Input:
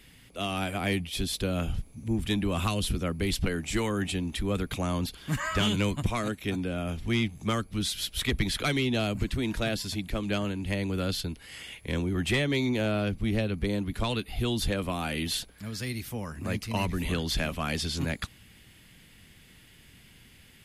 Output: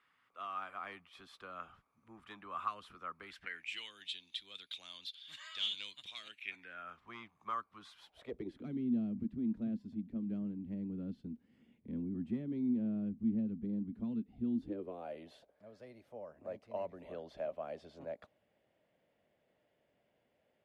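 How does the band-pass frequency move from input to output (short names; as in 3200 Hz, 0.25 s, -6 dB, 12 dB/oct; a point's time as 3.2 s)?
band-pass, Q 6
3.2 s 1200 Hz
3.92 s 3600 Hz
6.15 s 3600 Hz
7.04 s 1100 Hz
7.96 s 1100 Hz
8.67 s 230 Hz
14.53 s 230 Hz
15.08 s 600 Hz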